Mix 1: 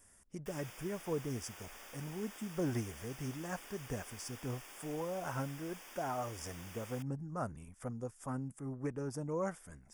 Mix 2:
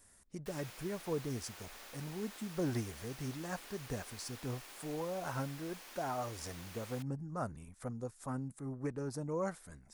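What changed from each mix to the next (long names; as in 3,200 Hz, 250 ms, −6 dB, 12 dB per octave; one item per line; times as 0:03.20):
master: remove Butterworth band-reject 4,100 Hz, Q 3.5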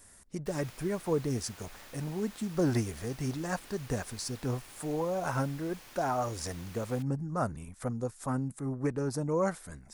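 speech +7.5 dB
background: remove high-pass filter 300 Hz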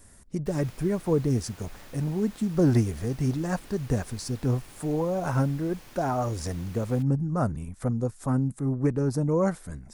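master: add low-shelf EQ 440 Hz +9.5 dB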